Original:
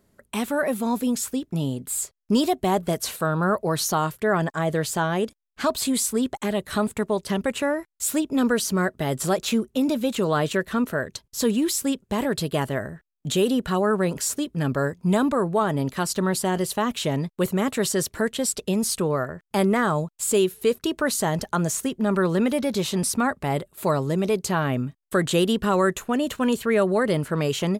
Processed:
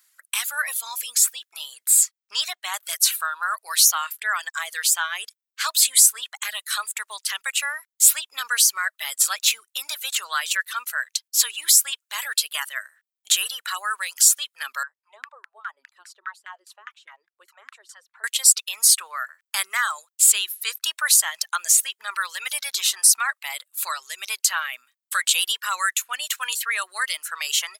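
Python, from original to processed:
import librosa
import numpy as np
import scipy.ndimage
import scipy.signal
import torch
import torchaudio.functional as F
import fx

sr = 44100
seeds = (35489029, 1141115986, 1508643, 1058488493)

y = fx.peak_eq(x, sr, hz=13000.0, db=-14.5, octaves=0.94, at=(2.18, 2.74))
y = fx.filter_lfo_bandpass(y, sr, shape='saw_down', hz=4.9, low_hz=220.0, high_hz=1700.0, q=4.6, at=(14.83, 18.24))
y = fx.dereverb_blind(y, sr, rt60_s=0.9)
y = scipy.signal.sosfilt(scipy.signal.butter(4, 1300.0, 'highpass', fs=sr, output='sos'), y)
y = fx.high_shelf(y, sr, hz=3400.0, db=9.0)
y = y * librosa.db_to_amplitude(4.5)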